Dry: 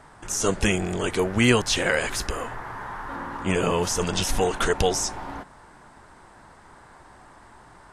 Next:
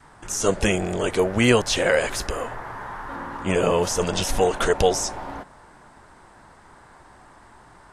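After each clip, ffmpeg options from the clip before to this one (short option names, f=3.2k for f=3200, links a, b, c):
-af "adynamicequalizer=threshold=0.0126:dfrequency=570:dqfactor=1.9:tfrequency=570:tqfactor=1.9:attack=5:release=100:ratio=0.375:range=3.5:mode=boostabove:tftype=bell"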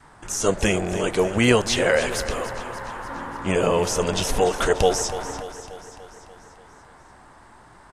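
-af "aecho=1:1:292|584|876|1168|1460|1752|2044:0.224|0.134|0.0806|0.0484|0.029|0.0174|0.0104"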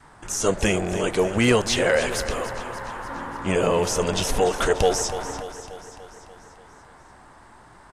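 -af "asoftclip=type=tanh:threshold=-7dB"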